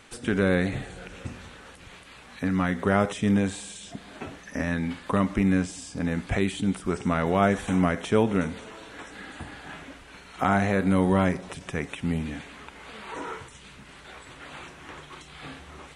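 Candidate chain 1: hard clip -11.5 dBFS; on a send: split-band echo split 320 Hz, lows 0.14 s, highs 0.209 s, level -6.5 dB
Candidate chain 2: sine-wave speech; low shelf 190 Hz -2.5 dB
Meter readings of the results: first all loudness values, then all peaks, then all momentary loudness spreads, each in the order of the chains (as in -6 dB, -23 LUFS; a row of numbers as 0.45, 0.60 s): -25.5, -26.0 LUFS; -9.0, -10.0 dBFS; 20, 22 LU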